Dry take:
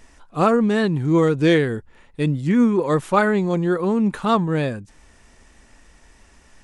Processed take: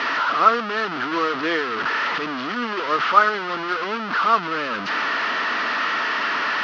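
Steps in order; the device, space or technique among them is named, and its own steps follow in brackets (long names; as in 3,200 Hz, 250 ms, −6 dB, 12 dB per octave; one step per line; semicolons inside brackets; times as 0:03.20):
digital answering machine (band-pass filter 330–3,100 Hz; linear delta modulator 32 kbit/s, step −17 dBFS; loudspeaker in its box 360–4,100 Hz, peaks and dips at 370 Hz −7 dB, 530 Hz −9 dB, 790 Hz −8 dB, 1,300 Hz +8 dB, 2,300 Hz −4 dB, 3,700 Hz −6 dB)
level +1.5 dB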